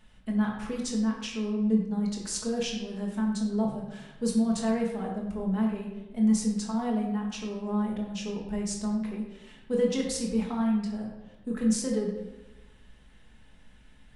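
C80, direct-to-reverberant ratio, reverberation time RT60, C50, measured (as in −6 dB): 6.0 dB, −2.0 dB, 1.1 s, 4.0 dB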